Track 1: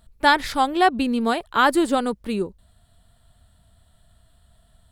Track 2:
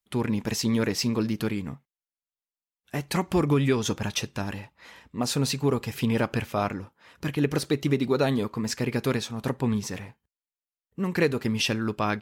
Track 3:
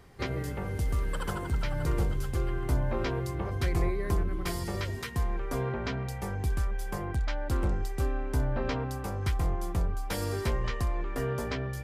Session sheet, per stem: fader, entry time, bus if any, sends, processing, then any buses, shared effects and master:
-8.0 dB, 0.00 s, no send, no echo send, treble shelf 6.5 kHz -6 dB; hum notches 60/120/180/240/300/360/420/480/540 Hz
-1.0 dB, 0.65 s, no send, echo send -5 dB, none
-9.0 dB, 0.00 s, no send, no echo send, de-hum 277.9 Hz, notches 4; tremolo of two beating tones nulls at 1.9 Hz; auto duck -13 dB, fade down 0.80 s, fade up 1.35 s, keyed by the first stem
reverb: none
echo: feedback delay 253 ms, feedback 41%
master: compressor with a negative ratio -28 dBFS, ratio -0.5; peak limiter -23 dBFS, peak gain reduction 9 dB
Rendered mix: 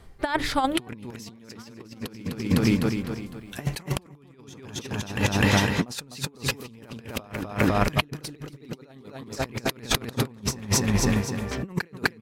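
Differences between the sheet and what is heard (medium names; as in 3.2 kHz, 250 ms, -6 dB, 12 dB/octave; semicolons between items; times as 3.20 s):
stem 2 -1.0 dB -> +10.0 dB; master: missing peak limiter -23 dBFS, peak gain reduction 9 dB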